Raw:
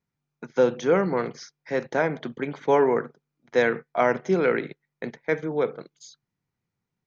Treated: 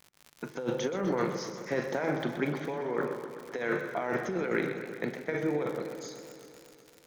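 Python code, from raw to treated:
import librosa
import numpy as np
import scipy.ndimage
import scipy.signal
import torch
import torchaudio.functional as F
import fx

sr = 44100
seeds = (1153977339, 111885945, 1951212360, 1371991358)

p1 = x + fx.room_flutter(x, sr, wall_m=6.9, rt60_s=0.21, dry=0)
p2 = fx.rev_fdn(p1, sr, rt60_s=1.2, lf_ratio=1.0, hf_ratio=0.9, size_ms=17.0, drr_db=11.0)
p3 = fx.dmg_crackle(p2, sr, seeds[0], per_s=90.0, level_db=-37.0)
p4 = fx.over_compress(p3, sr, threshold_db=-26.0, ratio=-1.0)
p5 = fx.echo_warbled(p4, sr, ms=127, feedback_pct=75, rate_hz=2.8, cents=111, wet_db=-11.5)
y = p5 * librosa.db_to_amplitude(-4.5)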